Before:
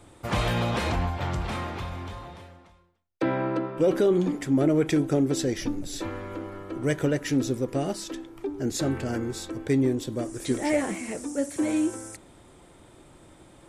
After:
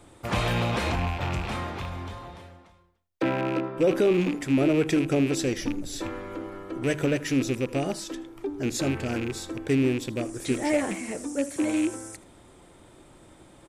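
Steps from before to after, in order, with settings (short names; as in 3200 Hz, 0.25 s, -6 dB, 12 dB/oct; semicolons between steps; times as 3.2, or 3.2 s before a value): rattling part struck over -30 dBFS, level -25 dBFS; notches 50/100/150 Hz; echo 79 ms -19.5 dB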